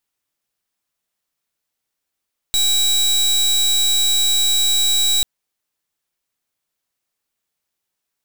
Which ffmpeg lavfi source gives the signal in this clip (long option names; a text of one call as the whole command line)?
ffmpeg -f lavfi -i "aevalsrc='0.158*(2*lt(mod(3870*t,1),0.27)-1)':duration=2.69:sample_rate=44100" out.wav